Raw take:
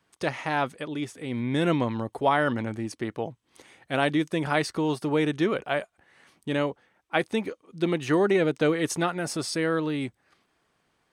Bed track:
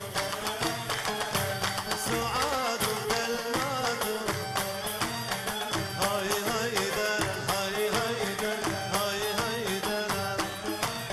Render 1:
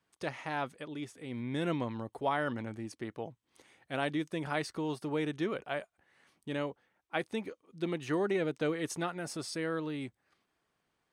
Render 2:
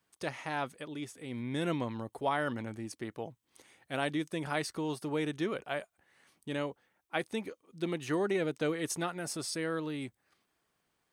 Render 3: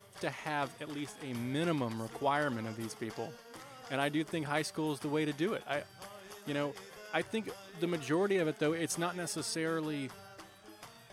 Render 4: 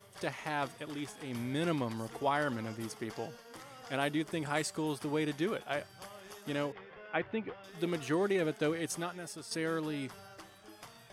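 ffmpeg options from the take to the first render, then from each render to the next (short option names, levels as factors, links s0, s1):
-af "volume=0.355"
-af "crystalizer=i=1:c=0"
-filter_complex "[1:a]volume=0.0841[s0];[0:a][s0]amix=inputs=2:normalize=0"
-filter_complex "[0:a]asettb=1/sr,asplit=3[s0][s1][s2];[s0]atrim=end=4.434[s3];[s1]atrim=start=4.43:end=4.83,asetpts=PTS-STARTPTS,afade=t=in:d=0.004:c=qsin,afade=t=out:st=0.396:d=0.004:c=qsin,equalizer=f=7500:w=6.3:g=14[s4];[s2]atrim=start=4.826[s5];[s3][s4]acrossfade=d=0.004:c1=hsin:c2=qsin[s6];[s6][s5]acrossfade=d=0.004:c1=qsin:c2=hsin,asettb=1/sr,asplit=3[s7][s8][s9];[s7]atrim=end=6.724[s10];[s8]atrim=start=6.72:end=7.64,asetpts=PTS-STARTPTS,afade=t=in:d=0.004:c=qsin,afade=t=out:st=0.916:d=0.004:c=qsin,lowpass=f=2900:w=0.5412,lowpass=f=2900:w=1.3066[s11];[s9]atrim=start=7.636[s12];[s10][s11]acrossfade=d=0.004:c1=hsin:c2=qsin[s13];[s13][s12]acrossfade=d=0.004:c1=qsin:c2=hsin,asplit=2[s14][s15];[s14]atrim=end=9.51,asetpts=PTS-STARTPTS,afade=t=out:st=8.65:d=0.86:silence=0.298538[s16];[s15]atrim=start=9.51,asetpts=PTS-STARTPTS,afade=t=in:d=0.004:c=hsin:silence=0.298538[s17];[s16][s17]concat=n=2:v=0:a=1"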